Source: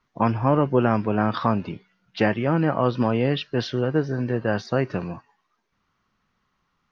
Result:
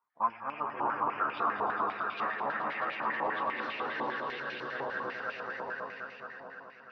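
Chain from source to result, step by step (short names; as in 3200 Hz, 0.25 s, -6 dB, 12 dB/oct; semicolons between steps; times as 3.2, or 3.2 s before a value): swelling echo 0.107 s, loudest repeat 5, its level -3.5 dB; chorus voices 6, 0.51 Hz, delay 12 ms, depth 2.5 ms; stepped band-pass 10 Hz 940–2400 Hz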